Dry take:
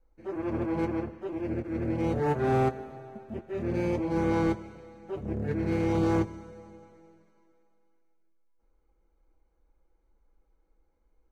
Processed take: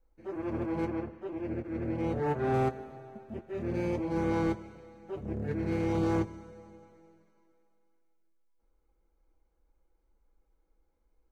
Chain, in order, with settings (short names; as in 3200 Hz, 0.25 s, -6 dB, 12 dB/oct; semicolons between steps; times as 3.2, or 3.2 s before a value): 0.9–2.54 tone controls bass -1 dB, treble -5 dB; gain -3 dB